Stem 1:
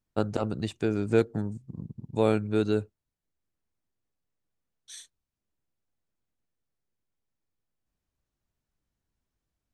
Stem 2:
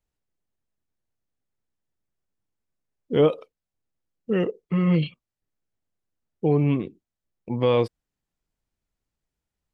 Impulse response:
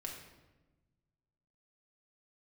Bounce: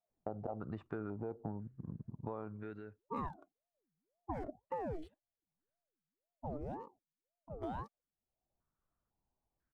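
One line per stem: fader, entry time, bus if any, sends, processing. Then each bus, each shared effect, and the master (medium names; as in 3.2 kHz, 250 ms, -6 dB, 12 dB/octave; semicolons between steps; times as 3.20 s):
-6.0 dB, 0.10 s, no send, peak limiter -19.5 dBFS, peak gain reduction 9.5 dB; step-sequenced low-pass 2 Hz 750–1800 Hz; auto duck -20 dB, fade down 0.85 s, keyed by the second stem
4.73 s -5 dB -> 5.13 s -13 dB, 0.00 s, no send, local Wiener filter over 9 samples; static phaser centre 520 Hz, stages 8; ring modulator with a swept carrier 430 Hz, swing 65%, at 1.9 Hz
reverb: none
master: compression 8:1, threshold -37 dBFS, peak gain reduction 15 dB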